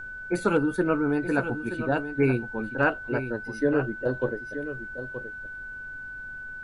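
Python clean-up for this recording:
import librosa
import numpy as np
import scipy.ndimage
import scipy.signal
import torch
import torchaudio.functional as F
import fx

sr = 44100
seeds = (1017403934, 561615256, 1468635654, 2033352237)

y = fx.fix_declip(x, sr, threshold_db=-12.0)
y = fx.notch(y, sr, hz=1500.0, q=30.0)
y = fx.noise_reduce(y, sr, print_start_s=5.69, print_end_s=6.19, reduce_db=30.0)
y = fx.fix_echo_inverse(y, sr, delay_ms=925, level_db=-10.5)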